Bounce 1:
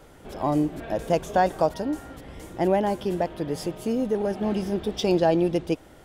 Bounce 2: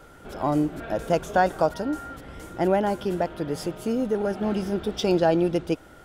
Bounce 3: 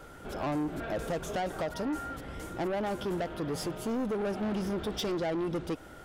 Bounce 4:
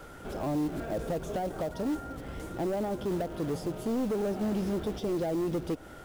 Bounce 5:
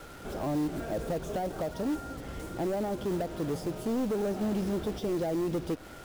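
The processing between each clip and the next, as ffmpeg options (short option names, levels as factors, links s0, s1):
-af "equalizer=f=1400:w=7.5:g=11.5"
-af "acompressor=threshold=0.0891:ratio=6,asoftclip=type=tanh:threshold=0.0398"
-filter_complex "[0:a]acrossover=split=810[s0][s1];[s0]acrusher=bits=5:mode=log:mix=0:aa=0.000001[s2];[s1]acompressor=threshold=0.00355:ratio=6[s3];[s2][s3]amix=inputs=2:normalize=0,volume=1.26"
-af "acrusher=bits=7:mix=0:aa=0.5"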